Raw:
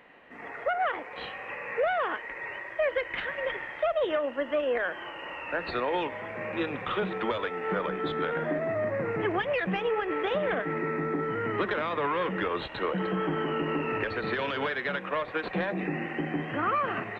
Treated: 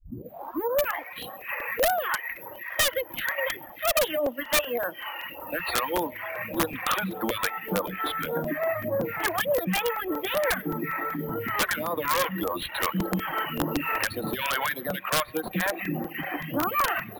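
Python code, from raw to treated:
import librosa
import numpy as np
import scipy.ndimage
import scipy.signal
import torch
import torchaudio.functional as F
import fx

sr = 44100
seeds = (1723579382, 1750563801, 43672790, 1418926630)

y = fx.tape_start_head(x, sr, length_s=1.02)
y = fx.hum_notches(y, sr, base_hz=50, count=4)
y = np.repeat(scipy.signal.resample_poly(y, 1, 3), 3)[:len(y)]
y = fx.phaser_stages(y, sr, stages=2, low_hz=170.0, high_hz=2500.0, hz=1.7, feedback_pct=15)
y = fx.notch(y, sr, hz=430.0, q=12.0)
y = fx.echo_feedback(y, sr, ms=132, feedback_pct=57, wet_db=-19.0)
y = fx.dereverb_blind(y, sr, rt60_s=1.0)
y = fx.low_shelf(y, sr, hz=80.0, db=-10.5)
y = (np.mod(10.0 ** (23.5 / 20.0) * y + 1.0, 2.0) - 1.0) / 10.0 ** (23.5 / 20.0)
y = fx.peak_eq(y, sr, hz=400.0, db=-7.0, octaves=0.27)
y = fx.buffer_crackle(y, sr, first_s=0.84, period_s=0.19, block=128, kind='repeat')
y = F.gain(torch.from_numpy(y), 7.5).numpy()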